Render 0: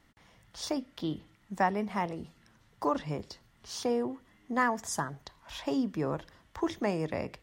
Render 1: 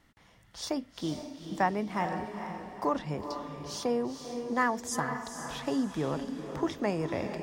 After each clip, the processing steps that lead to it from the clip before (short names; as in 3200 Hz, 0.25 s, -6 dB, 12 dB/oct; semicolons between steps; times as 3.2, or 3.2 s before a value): diffused feedback echo 0.464 s, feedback 40%, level -7 dB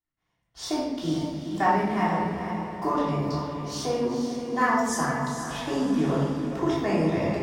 expander -46 dBFS; shoebox room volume 590 m³, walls mixed, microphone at 3.3 m; gain -2 dB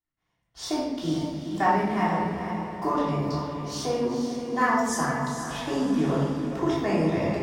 nothing audible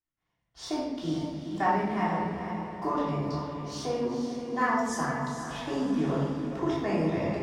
high shelf 9200 Hz -10 dB; gain -3.5 dB